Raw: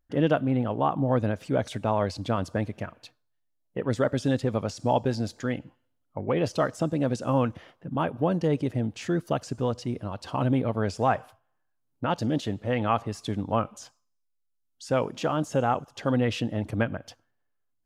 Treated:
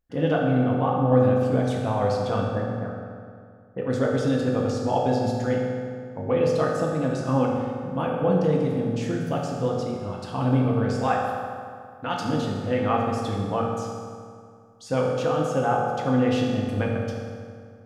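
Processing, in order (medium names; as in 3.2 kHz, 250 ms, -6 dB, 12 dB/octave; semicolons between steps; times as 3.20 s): 2.44–3.78 s: steep low-pass 1.7 kHz 36 dB/octave; 10.97–12.25 s: tilt shelf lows -5.5 dB; reverberation RT60 2.2 s, pre-delay 3 ms, DRR -3 dB; trim -3 dB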